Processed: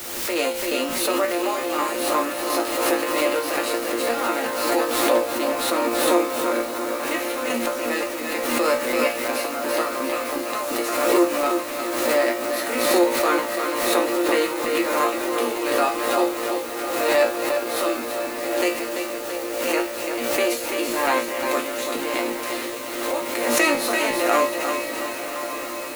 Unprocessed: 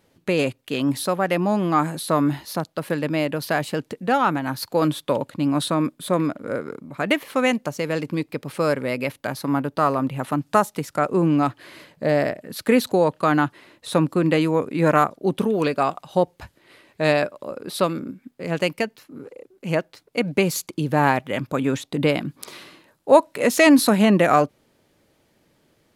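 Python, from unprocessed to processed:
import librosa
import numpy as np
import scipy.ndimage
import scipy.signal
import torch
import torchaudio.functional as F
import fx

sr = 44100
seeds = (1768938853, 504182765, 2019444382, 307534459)

p1 = fx.bin_compress(x, sr, power=0.6)
p2 = scipy.signal.sosfilt(scipy.signal.cheby1(10, 1.0, 240.0, 'highpass', fs=sr, output='sos'), p1)
p3 = p2 + fx.echo_feedback(p2, sr, ms=337, feedback_pct=52, wet_db=-6.5, dry=0)
p4 = fx.chopper(p3, sr, hz=2.8, depth_pct=60, duty_pct=50)
p5 = fx.high_shelf(p4, sr, hz=3300.0, db=5.5)
p6 = fx.resonator_bank(p5, sr, root=46, chord='fifth', decay_s=0.34)
p7 = fx.quant_dither(p6, sr, seeds[0], bits=8, dither='triangular')
p8 = fx.echo_diffused(p7, sr, ms=1109, feedback_pct=67, wet_db=-9.5)
p9 = fx.pre_swell(p8, sr, db_per_s=35.0)
y = F.gain(torch.from_numpy(p9), 8.0).numpy()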